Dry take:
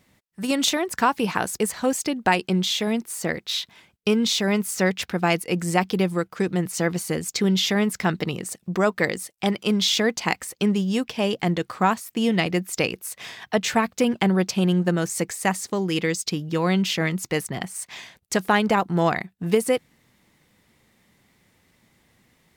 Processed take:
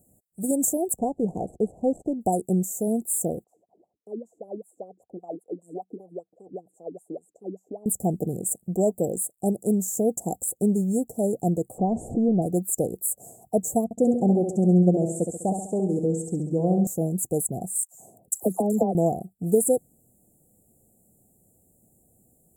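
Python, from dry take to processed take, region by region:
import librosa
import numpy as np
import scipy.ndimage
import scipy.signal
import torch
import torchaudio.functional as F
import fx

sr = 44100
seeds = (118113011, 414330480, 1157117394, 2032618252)

y = fx.chain(x, sr, fx.median_filter(points=25),
    fx.lowpass(hz=4100.0, slope=12), at=(0.98, 2.21))
y = fx.chain(y, sr, fx.wah_lfo(hz=5.1, low_hz=280.0, high_hz=1400.0, q=7.9),
    fx.band_squash(depth_pct=40), at=(3.44, 7.86))
y = fx.chain(y, sr, fx.zero_step(step_db=-29.5),
    fx.spacing_loss(db_at_10k=43),
    fx.env_flatten(amount_pct=50), at=(11.78, 12.42))
y = fx.chain(y, sr, fx.lowpass(hz=4200.0, slope=12),
    fx.echo_feedback(ms=67, feedback_pct=51, wet_db=-6.5), at=(13.84, 16.87))
y = fx.chain(y, sr, fx.highpass(hz=78.0, slope=12),
    fx.dispersion(late='lows', ms=114.0, hz=1400.0), at=(17.82, 18.95))
y = scipy.signal.sosfilt(scipy.signal.cheby1(5, 1.0, [740.0, 7400.0], 'bandstop', fs=sr, output='sos'), y)
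y = fx.high_shelf(y, sr, hz=3100.0, db=8.5)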